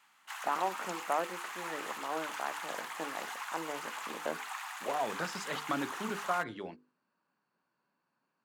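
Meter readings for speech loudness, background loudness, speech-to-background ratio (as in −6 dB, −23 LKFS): −38.5 LKFS, −41.0 LKFS, 2.5 dB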